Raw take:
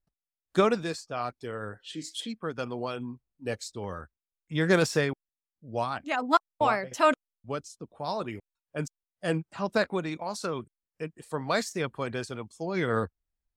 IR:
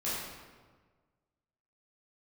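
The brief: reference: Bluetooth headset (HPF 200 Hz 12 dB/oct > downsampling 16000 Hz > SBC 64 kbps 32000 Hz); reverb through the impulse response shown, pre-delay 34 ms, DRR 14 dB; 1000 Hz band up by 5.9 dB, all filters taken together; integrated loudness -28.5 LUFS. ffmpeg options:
-filter_complex "[0:a]equalizer=f=1k:t=o:g=7.5,asplit=2[a][b];[1:a]atrim=start_sample=2205,adelay=34[c];[b][c]afir=irnorm=-1:irlink=0,volume=-20dB[d];[a][d]amix=inputs=2:normalize=0,highpass=200,aresample=16000,aresample=44100,volume=-1dB" -ar 32000 -c:a sbc -b:a 64k

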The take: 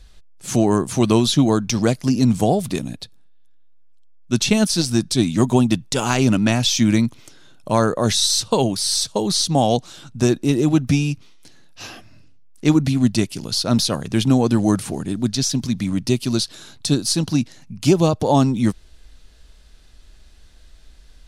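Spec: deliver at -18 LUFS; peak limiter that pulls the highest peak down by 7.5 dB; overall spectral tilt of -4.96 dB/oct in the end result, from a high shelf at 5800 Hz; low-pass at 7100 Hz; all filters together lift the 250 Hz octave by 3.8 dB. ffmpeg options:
-af "lowpass=7.1k,equalizer=f=250:t=o:g=4.5,highshelf=f=5.8k:g=3.5,volume=1dB,alimiter=limit=-7.5dB:level=0:latency=1"

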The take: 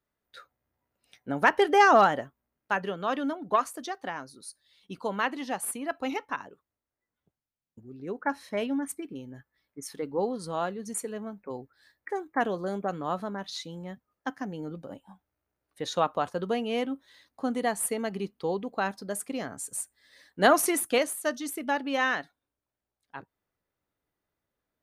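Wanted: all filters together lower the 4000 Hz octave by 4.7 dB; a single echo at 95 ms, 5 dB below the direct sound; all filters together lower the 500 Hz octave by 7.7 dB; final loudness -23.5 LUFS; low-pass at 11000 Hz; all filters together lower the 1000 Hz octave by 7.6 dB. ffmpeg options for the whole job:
-af "lowpass=11k,equalizer=f=500:t=o:g=-8,equalizer=f=1k:t=o:g=-7,equalizer=f=4k:t=o:g=-6,aecho=1:1:95:0.562,volume=10dB"

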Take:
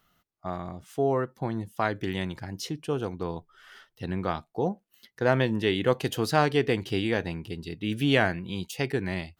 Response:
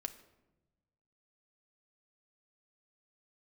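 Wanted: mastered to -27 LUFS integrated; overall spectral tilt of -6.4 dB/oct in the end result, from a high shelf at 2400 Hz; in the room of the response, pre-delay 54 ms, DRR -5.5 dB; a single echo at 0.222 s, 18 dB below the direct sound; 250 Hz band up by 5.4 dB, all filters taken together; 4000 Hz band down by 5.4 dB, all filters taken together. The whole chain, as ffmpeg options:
-filter_complex "[0:a]equalizer=f=250:t=o:g=7,highshelf=f=2.4k:g=-4,equalizer=f=4k:t=o:g=-4,aecho=1:1:222:0.126,asplit=2[a][b];[1:a]atrim=start_sample=2205,adelay=54[c];[b][c]afir=irnorm=-1:irlink=0,volume=7.5dB[d];[a][d]amix=inputs=2:normalize=0,volume=-8dB"

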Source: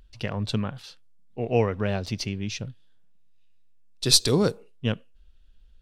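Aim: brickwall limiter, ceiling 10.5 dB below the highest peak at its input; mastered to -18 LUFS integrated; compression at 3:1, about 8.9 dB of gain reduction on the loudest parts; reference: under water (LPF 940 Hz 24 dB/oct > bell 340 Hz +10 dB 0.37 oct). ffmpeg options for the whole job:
-af "acompressor=threshold=-24dB:ratio=3,alimiter=limit=-20.5dB:level=0:latency=1,lowpass=f=940:w=0.5412,lowpass=f=940:w=1.3066,equalizer=f=340:t=o:w=0.37:g=10,volume=15dB"

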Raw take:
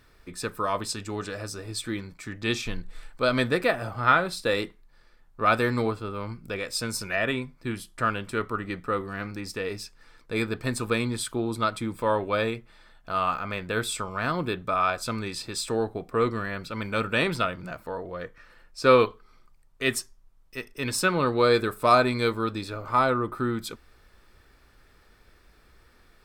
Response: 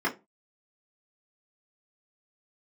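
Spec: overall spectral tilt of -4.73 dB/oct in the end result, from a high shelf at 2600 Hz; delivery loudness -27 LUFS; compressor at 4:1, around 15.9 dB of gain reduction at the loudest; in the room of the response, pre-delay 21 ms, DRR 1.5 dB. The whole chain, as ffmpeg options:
-filter_complex "[0:a]highshelf=f=2.6k:g=-8,acompressor=threshold=-33dB:ratio=4,asplit=2[a][b];[1:a]atrim=start_sample=2205,adelay=21[c];[b][c]afir=irnorm=-1:irlink=0,volume=-12.5dB[d];[a][d]amix=inputs=2:normalize=0,volume=7.5dB"

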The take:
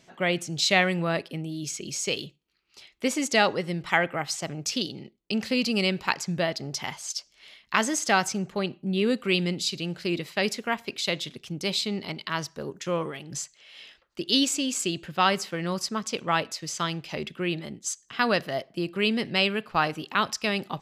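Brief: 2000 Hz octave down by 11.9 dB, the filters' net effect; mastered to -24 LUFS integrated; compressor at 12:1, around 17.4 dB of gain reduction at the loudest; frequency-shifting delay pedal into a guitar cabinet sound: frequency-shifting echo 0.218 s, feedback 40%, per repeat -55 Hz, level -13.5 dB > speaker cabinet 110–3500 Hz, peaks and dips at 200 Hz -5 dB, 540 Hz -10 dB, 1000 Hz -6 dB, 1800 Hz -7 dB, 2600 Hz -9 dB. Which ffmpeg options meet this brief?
-filter_complex "[0:a]equalizer=f=2k:t=o:g=-8,acompressor=threshold=-37dB:ratio=12,asplit=5[a][b][c][d][e];[b]adelay=218,afreqshift=-55,volume=-13.5dB[f];[c]adelay=436,afreqshift=-110,volume=-21.5dB[g];[d]adelay=654,afreqshift=-165,volume=-29.4dB[h];[e]adelay=872,afreqshift=-220,volume=-37.4dB[i];[a][f][g][h][i]amix=inputs=5:normalize=0,highpass=110,equalizer=f=200:t=q:w=4:g=-5,equalizer=f=540:t=q:w=4:g=-10,equalizer=f=1k:t=q:w=4:g=-6,equalizer=f=1.8k:t=q:w=4:g=-7,equalizer=f=2.6k:t=q:w=4:g=-9,lowpass=f=3.5k:w=0.5412,lowpass=f=3.5k:w=1.3066,volume=22dB"

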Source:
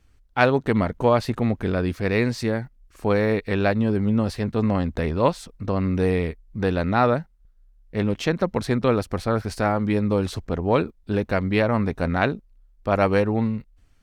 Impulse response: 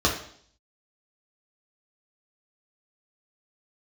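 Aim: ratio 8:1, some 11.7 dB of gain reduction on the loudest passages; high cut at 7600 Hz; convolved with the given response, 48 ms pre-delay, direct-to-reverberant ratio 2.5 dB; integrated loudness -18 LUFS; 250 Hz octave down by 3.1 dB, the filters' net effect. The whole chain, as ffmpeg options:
-filter_complex "[0:a]lowpass=7.6k,equalizer=f=250:t=o:g=-4,acompressor=threshold=-26dB:ratio=8,asplit=2[a][b];[1:a]atrim=start_sample=2205,adelay=48[c];[b][c]afir=irnorm=-1:irlink=0,volume=-17.5dB[d];[a][d]amix=inputs=2:normalize=0,volume=11dB"

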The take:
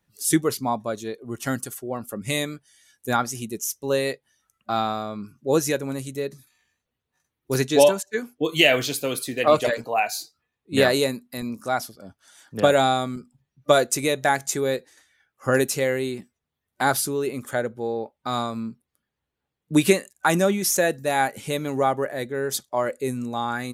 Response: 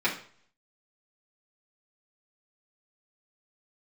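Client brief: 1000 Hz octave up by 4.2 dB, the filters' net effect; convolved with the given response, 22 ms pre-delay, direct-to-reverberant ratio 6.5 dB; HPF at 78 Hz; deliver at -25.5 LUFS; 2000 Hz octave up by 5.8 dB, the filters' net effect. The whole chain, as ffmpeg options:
-filter_complex "[0:a]highpass=78,equalizer=f=1k:t=o:g=4.5,equalizer=f=2k:t=o:g=6,asplit=2[a][b];[1:a]atrim=start_sample=2205,adelay=22[c];[b][c]afir=irnorm=-1:irlink=0,volume=-18.5dB[d];[a][d]amix=inputs=2:normalize=0,volume=-5dB"

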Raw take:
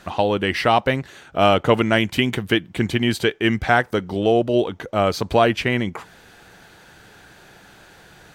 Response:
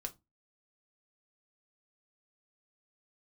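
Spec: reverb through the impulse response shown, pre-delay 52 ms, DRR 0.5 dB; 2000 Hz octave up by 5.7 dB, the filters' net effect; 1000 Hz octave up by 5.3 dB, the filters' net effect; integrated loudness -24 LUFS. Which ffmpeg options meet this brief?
-filter_complex "[0:a]equalizer=f=1k:t=o:g=6.5,equalizer=f=2k:t=o:g=5,asplit=2[a][b];[1:a]atrim=start_sample=2205,adelay=52[c];[b][c]afir=irnorm=-1:irlink=0,volume=1.5dB[d];[a][d]amix=inputs=2:normalize=0,volume=-10dB"

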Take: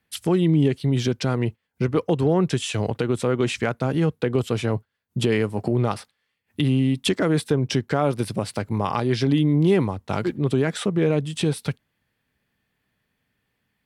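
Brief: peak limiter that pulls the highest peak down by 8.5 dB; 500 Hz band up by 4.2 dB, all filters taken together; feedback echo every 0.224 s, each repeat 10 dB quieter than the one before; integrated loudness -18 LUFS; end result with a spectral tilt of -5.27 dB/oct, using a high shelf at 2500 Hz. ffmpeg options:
-af "equalizer=f=500:t=o:g=5,highshelf=f=2.5k:g=7.5,alimiter=limit=-13.5dB:level=0:latency=1,aecho=1:1:224|448|672|896:0.316|0.101|0.0324|0.0104,volume=5.5dB"

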